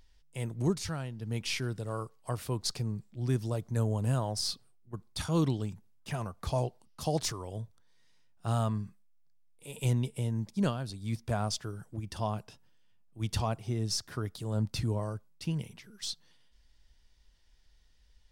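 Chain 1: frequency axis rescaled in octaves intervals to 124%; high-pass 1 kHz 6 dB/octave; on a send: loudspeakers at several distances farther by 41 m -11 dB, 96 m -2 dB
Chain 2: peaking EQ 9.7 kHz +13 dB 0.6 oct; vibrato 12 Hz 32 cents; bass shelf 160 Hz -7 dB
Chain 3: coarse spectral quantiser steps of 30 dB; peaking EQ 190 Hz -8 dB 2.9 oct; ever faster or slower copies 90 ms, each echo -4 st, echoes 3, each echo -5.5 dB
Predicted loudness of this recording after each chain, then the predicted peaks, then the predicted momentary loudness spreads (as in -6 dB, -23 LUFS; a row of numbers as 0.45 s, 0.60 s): -42.5 LUFS, -35.0 LUFS, -38.0 LUFS; -26.0 dBFS, -15.5 dBFS, -19.5 dBFS; 10 LU, 12 LU, 11 LU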